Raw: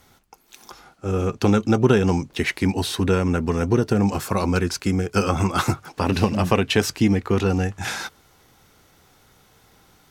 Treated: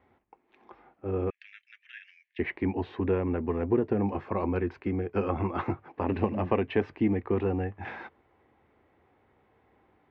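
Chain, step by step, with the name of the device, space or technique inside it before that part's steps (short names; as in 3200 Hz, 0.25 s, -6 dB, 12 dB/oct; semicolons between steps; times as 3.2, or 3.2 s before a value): bass cabinet (speaker cabinet 75–2100 Hz, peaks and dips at 120 Hz -7 dB, 170 Hz -9 dB, 350 Hz +3 dB, 1400 Hz -10 dB); 1.3–2.39 steep high-pass 1700 Hz 72 dB/oct; gain -6 dB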